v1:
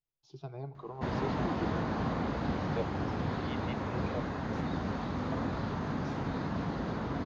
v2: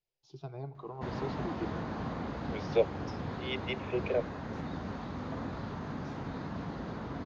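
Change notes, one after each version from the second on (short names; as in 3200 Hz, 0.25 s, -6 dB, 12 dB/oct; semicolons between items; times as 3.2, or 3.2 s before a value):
second voice +10.5 dB; background -4.5 dB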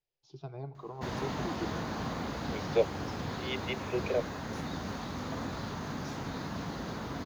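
background: remove tape spacing loss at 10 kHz 23 dB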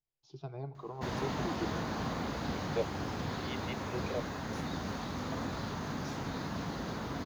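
second voice -7.5 dB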